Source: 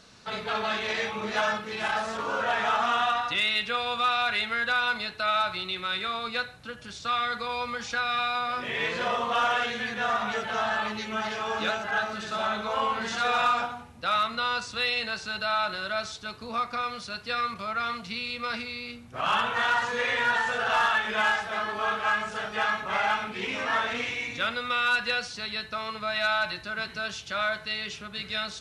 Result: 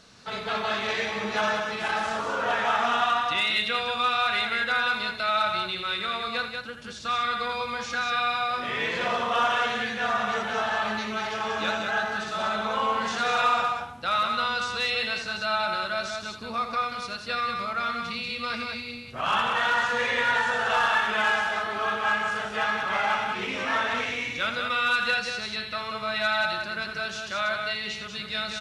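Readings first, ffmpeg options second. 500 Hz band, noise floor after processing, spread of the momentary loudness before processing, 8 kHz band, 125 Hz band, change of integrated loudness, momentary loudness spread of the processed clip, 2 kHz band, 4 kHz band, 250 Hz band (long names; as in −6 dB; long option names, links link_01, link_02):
+1.5 dB, −38 dBFS, 8 LU, +1.5 dB, +1.5 dB, +1.5 dB, 7 LU, +1.5 dB, +1.5 dB, +1.5 dB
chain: -af "aecho=1:1:84.55|186.6:0.316|0.562"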